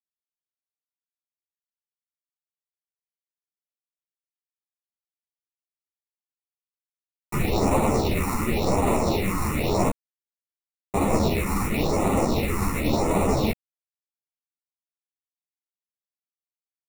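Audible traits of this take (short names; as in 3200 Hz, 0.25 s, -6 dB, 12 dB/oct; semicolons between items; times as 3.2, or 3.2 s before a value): aliases and images of a low sample rate 1600 Hz, jitter 0%; phasing stages 4, 0.93 Hz, lowest notch 550–4800 Hz; a quantiser's noise floor 10-bit, dither none; a shimmering, thickened sound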